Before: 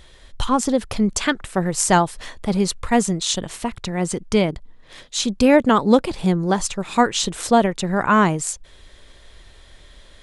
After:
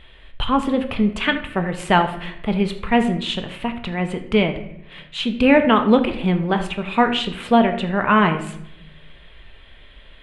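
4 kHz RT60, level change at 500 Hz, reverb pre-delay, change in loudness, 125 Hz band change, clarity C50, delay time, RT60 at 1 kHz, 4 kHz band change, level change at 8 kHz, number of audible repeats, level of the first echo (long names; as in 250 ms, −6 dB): 0.55 s, −0.5 dB, 5 ms, 0.0 dB, 0.0 dB, 10.5 dB, no echo audible, 0.70 s, +0.5 dB, below −15 dB, no echo audible, no echo audible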